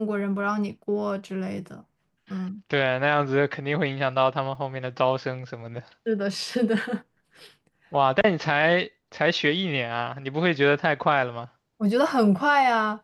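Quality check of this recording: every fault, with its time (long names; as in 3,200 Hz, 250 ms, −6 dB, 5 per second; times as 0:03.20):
0:04.55: drop-out 3.1 ms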